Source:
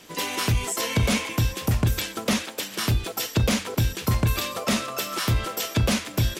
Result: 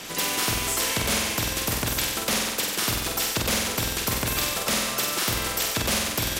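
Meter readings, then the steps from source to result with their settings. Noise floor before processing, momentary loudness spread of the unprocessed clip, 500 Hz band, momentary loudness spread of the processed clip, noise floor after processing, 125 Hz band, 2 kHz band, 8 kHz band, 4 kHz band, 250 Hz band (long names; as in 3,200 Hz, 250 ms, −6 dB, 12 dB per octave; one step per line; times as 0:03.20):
−40 dBFS, 3 LU, −0.5 dB, 2 LU, −31 dBFS, −9.5 dB, +2.5 dB, +6.0 dB, +3.5 dB, −4.5 dB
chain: on a send: flutter between parallel walls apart 8.1 metres, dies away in 0.66 s
on the sum: every bin compressed towards the loudest bin 2 to 1
level −1.5 dB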